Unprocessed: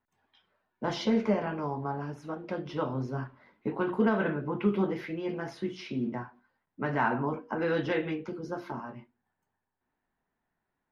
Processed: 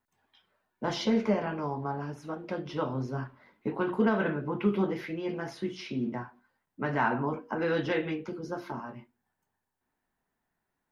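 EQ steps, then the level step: high shelf 4700 Hz +5 dB; 0.0 dB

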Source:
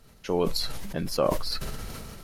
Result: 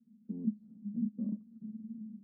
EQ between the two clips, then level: Butterworth band-pass 220 Hz, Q 6.5; +7.0 dB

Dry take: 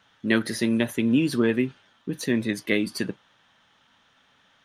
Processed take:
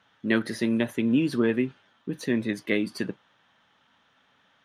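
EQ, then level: low shelf 63 Hz -9.5 dB; high shelf 4100 Hz -8.5 dB; -1.0 dB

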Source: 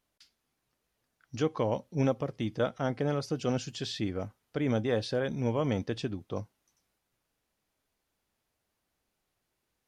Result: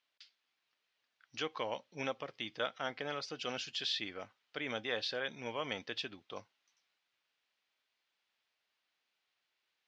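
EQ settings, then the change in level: band-pass 3400 Hz, Q 1; air absorption 120 m; +7.0 dB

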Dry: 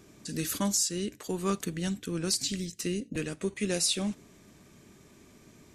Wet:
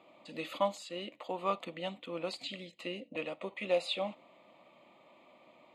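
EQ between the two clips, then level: resonant high-pass 500 Hz, resonance Q 4.9; air absorption 210 m; fixed phaser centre 1600 Hz, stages 6; +3.5 dB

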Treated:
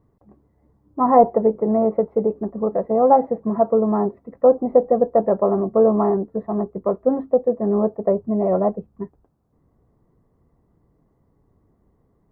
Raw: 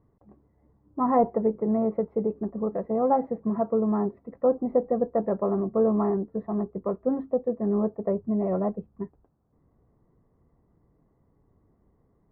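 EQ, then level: dynamic EQ 660 Hz, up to +7 dB, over -37 dBFS, Q 0.89; +3.0 dB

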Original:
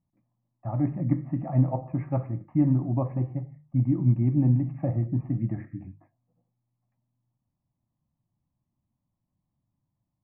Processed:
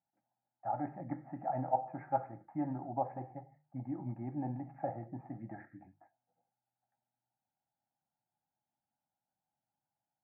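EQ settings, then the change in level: double band-pass 1100 Hz, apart 0.84 oct; air absorption 460 m; +9.5 dB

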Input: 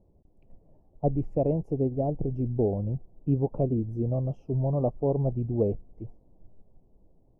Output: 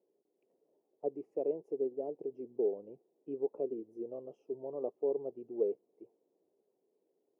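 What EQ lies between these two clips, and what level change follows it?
ladder high-pass 370 Hz, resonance 60%; bell 660 Hz -7.5 dB 1.3 oct; +1.0 dB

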